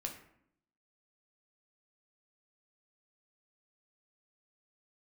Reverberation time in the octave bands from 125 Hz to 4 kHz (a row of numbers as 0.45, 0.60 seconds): 0.85, 0.95, 0.70, 0.65, 0.60, 0.40 seconds